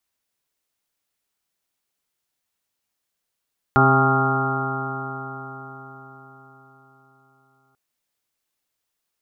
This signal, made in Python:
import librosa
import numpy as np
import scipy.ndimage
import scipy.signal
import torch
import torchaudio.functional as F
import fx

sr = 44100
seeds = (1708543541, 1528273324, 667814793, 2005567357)

y = fx.additive_stiff(sr, length_s=3.99, hz=132.0, level_db=-17.5, upper_db=(-3.0, -3.5, -17.5, -9, -0.5, -12, -7.5, -3.5, 1.0), decay_s=4.71, stiffness=0.0011)